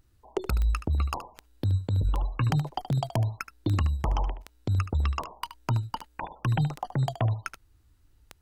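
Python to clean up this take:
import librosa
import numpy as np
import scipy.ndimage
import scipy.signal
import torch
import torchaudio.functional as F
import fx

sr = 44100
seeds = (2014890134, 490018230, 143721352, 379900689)

y = fx.fix_declick_ar(x, sr, threshold=10.0)
y = fx.fix_echo_inverse(y, sr, delay_ms=74, level_db=-12.0)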